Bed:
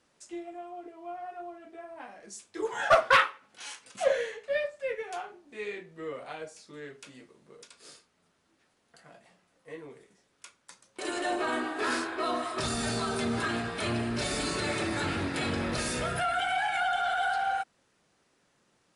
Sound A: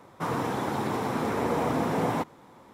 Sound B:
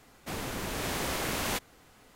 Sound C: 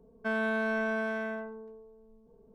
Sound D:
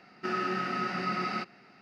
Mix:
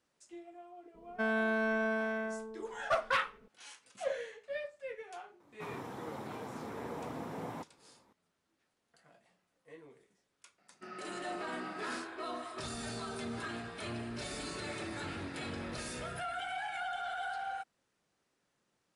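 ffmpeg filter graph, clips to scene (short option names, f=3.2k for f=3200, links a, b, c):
-filter_complex "[0:a]volume=-10dB[a];[4:a]equalizer=f=630:t=o:w=0.37:g=7[b];[3:a]atrim=end=2.54,asetpts=PTS-STARTPTS,volume=-1.5dB,afade=t=in:d=0.004:c=hsin,afade=t=out:st=2.536:d=0.004:c=hsin,adelay=940[c];[1:a]atrim=end=2.73,asetpts=PTS-STARTPTS,volume=-15dB,afade=t=in:d=0.004:c=hsin,afade=t=out:st=2.726:d=0.004:c=hsin,adelay=5400[d];[b]atrim=end=1.81,asetpts=PTS-STARTPTS,volume=-16.5dB,afade=t=in:d=0.004:c=hsin,afade=t=out:st=1.806:d=0.004:c=hsin,adelay=466578S[e];[a][c][d][e]amix=inputs=4:normalize=0"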